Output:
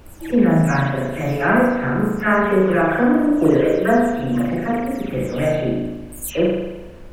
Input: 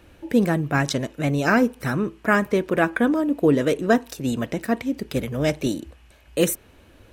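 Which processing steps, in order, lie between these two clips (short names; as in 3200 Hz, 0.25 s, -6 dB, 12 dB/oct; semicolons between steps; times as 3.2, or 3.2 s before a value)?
spectral delay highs early, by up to 0.247 s; bell 4400 Hz -11.5 dB 0.93 oct; reverb RT60 1.1 s, pre-delay 37 ms, DRR -4 dB; added noise brown -39 dBFS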